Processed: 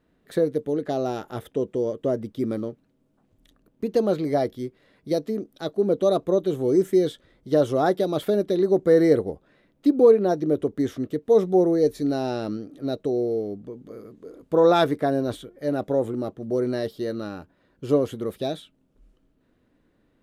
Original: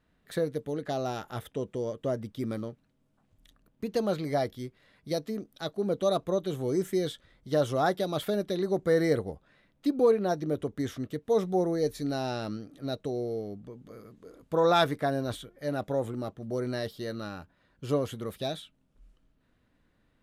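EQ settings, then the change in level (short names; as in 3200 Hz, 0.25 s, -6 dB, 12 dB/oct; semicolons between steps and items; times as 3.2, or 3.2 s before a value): bell 360 Hz +9.5 dB 1.7 oct; 0.0 dB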